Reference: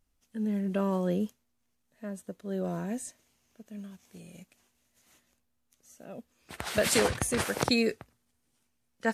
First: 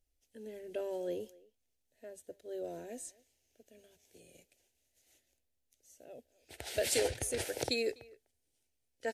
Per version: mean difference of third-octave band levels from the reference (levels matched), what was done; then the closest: 4.0 dB: static phaser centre 470 Hz, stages 4; speakerphone echo 250 ms, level -22 dB; trim -4.5 dB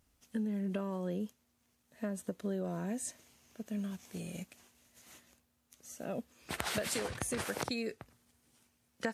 6.0 dB: high-pass 48 Hz; compression 16:1, threshold -39 dBFS, peak gain reduction 19.5 dB; trim +6.5 dB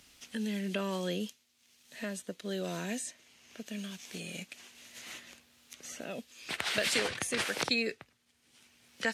8.0 dB: frequency weighting D; three bands compressed up and down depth 70%; trim -4 dB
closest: first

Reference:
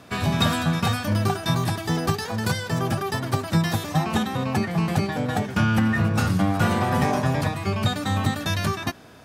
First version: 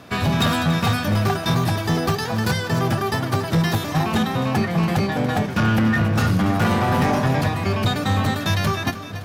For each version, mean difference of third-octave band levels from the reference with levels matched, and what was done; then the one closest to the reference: 2.0 dB: overload inside the chain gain 18.5 dB; peaking EQ 8.4 kHz -5 dB 0.65 oct; two-band feedback delay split 620 Hz, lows 641 ms, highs 283 ms, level -12.5 dB; trim +4 dB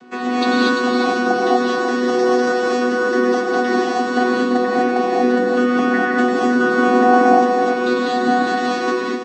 12.0 dB: vocoder on a held chord bare fifth, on B3; on a send: delay 344 ms -7.5 dB; on the sum: gated-style reverb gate 270 ms rising, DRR -5.5 dB; trim +2 dB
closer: first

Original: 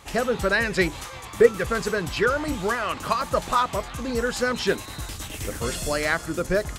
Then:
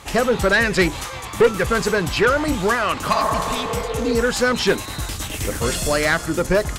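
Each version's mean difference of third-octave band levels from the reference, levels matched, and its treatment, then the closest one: 2.0 dB: valve stage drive 16 dB, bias 0.25; spectral replace 3.15–4.10 s, 330–2000 Hz both; trim +7.5 dB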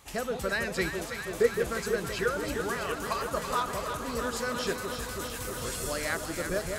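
5.0 dB: treble shelf 7.2 kHz +9 dB; echo whose repeats swap between lows and highs 164 ms, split 920 Hz, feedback 89%, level -6 dB; trim -9 dB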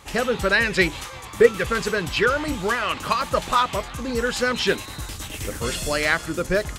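1.0 dB: band-stop 680 Hz, Q 18; dynamic bell 2.9 kHz, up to +6 dB, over -39 dBFS, Q 1.1; trim +1 dB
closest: third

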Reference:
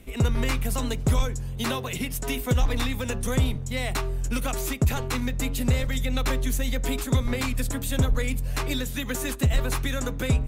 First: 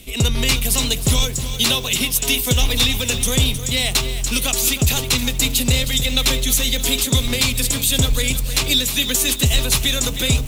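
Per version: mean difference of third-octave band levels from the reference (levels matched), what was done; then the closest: 6.5 dB: resonant high shelf 2.3 kHz +11 dB, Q 1.5; bit-crushed delay 313 ms, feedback 55%, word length 6-bit, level -10 dB; trim +4 dB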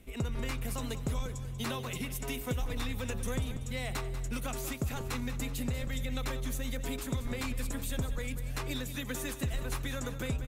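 2.5 dB: compression, threshold -22 dBFS, peak gain reduction 6 dB; on a send: feedback delay 190 ms, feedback 51%, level -12 dB; on the sum: trim -7.5 dB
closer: second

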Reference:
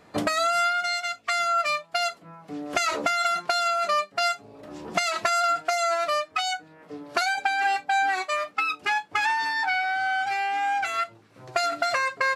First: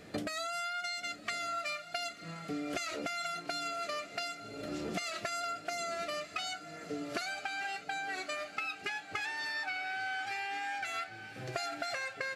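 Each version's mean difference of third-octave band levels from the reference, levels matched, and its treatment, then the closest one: 8.0 dB: peaking EQ 980 Hz -14.5 dB 0.66 oct; compression 10:1, threshold -39 dBFS, peak gain reduction 17 dB; echo that smears into a reverb 1129 ms, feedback 47%, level -12 dB; trim +4 dB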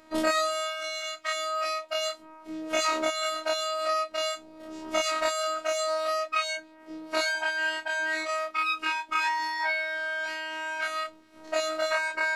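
6.0 dB: every event in the spectrogram widened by 60 ms; robot voice 316 Hz; in parallel at -7.5 dB: saturation -13.5 dBFS, distortion -16 dB; on the sum: trim -5.5 dB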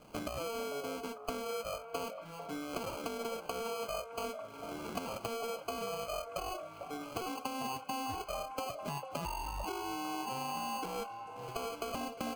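14.0 dB: compression 4:1, threshold -35 dBFS, peak gain reduction 13.5 dB; sample-and-hold 24×; on a send: repeats whose band climbs or falls 448 ms, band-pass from 670 Hz, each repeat 0.7 oct, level -5 dB; on the sum: trim -3.5 dB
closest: second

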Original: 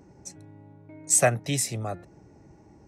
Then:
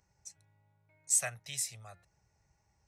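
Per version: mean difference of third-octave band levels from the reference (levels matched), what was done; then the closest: 7.0 dB: amplifier tone stack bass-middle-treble 10-0-10; trim -6.5 dB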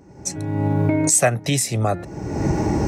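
10.0 dB: recorder AGC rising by 41 dB/s; trim +3.5 dB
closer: first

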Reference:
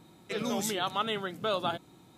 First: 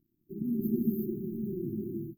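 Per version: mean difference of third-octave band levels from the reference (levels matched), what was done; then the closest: 22.0 dB: crossover distortion -52 dBFS; brick-wall FIR band-stop 390–13000 Hz; gated-style reverb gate 390 ms rising, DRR -3.5 dB; trim +2.5 dB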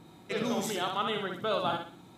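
3.5 dB: treble shelf 4.3 kHz -5.5 dB; gain riding within 4 dB 0.5 s; on a send: thinning echo 62 ms, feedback 37%, high-pass 200 Hz, level -4.5 dB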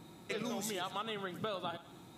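4.5 dB: band-stop 3.1 kHz, Q 26; compression 6:1, threshold -38 dBFS, peak gain reduction 12.5 dB; thinning echo 106 ms, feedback 52%, level -15 dB; trim +2 dB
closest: second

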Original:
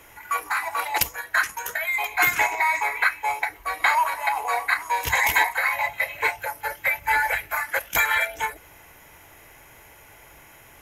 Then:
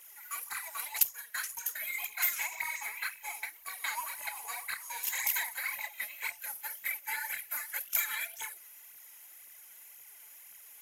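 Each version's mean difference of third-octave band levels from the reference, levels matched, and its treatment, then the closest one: 8.0 dB: differentiator; in parallel at -2 dB: compression, threshold -38 dBFS, peak gain reduction 22 dB; on the sum: phaser 1.9 Hz, delay 4.9 ms, feedback 62%; trim -8 dB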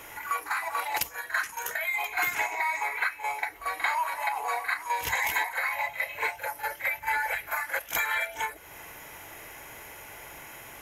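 4.0 dB: bass shelf 130 Hz -8 dB; compression 2:1, threshold -40 dBFS, peak gain reduction 13.5 dB; reverse echo 44 ms -11.5 dB; trim +4.5 dB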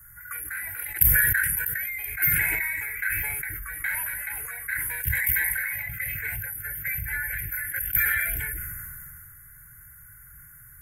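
11.5 dB: FFT filter 150 Hz 0 dB, 230 Hz -16 dB, 330 Hz -16 dB, 620 Hz -29 dB, 930 Hz -29 dB, 1.5 kHz -1 dB, 2.8 kHz -22 dB, 4.5 kHz -28 dB, 9.2 kHz -1 dB, 14 kHz +4 dB; touch-sensitive phaser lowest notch 430 Hz, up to 1.2 kHz, full sweep at -33.5 dBFS; decay stretcher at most 20 dB/s; trim +4 dB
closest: second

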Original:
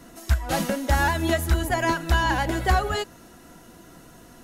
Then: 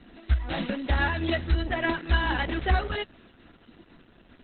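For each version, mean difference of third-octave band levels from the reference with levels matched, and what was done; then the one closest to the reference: 9.0 dB: graphic EQ 125/500/1000 Hz -10/-5/-8 dB; in parallel at -12 dB: saturation -26 dBFS, distortion -8 dB; on the sum: Opus 8 kbps 48 kHz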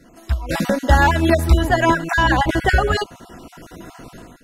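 4.5 dB: random holes in the spectrogram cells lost 29%; level rider gain up to 13 dB; treble shelf 6.8 kHz -10 dB; trim -1 dB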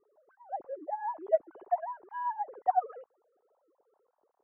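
24.5 dB: formants replaced by sine waves; Chebyshev low-pass 940 Hz, order 3; upward expansion 1.5:1, over -34 dBFS; trim -6.5 dB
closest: second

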